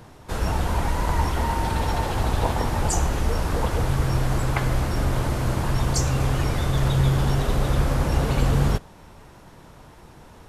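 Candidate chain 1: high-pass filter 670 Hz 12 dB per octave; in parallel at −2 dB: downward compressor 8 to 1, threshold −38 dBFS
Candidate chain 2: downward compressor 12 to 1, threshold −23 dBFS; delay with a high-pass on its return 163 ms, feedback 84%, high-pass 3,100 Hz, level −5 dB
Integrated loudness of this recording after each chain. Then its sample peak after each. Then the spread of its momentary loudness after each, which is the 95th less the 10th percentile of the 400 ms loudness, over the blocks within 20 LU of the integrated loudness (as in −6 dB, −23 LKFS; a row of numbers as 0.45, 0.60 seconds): −29.0, −29.0 LKFS; −12.0, −13.5 dBFS; 20, 16 LU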